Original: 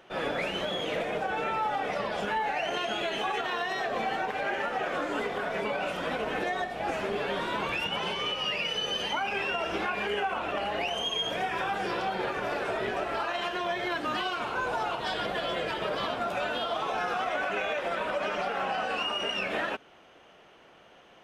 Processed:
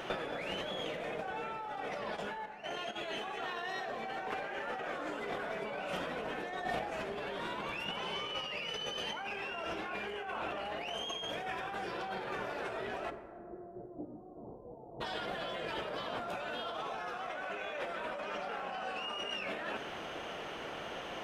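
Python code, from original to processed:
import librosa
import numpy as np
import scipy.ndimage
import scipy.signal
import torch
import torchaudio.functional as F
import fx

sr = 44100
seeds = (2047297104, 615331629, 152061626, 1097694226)

y = fx.over_compress(x, sr, threshold_db=-42.0, ratio=-1.0)
y = fx.step_gate(y, sr, bpm=165, pattern='..xxx.xxx', floor_db=-12.0, edge_ms=4.5, at=(2.15, 2.95), fade=0.02)
y = fx.gaussian_blur(y, sr, sigma=16.0, at=(13.09, 15.0), fade=0.02)
y = fx.rev_plate(y, sr, seeds[0], rt60_s=2.1, hf_ratio=0.35, predelay_ms=0, drr_db=9.5)
y = y * librosa.db_to_amplitude(2.0)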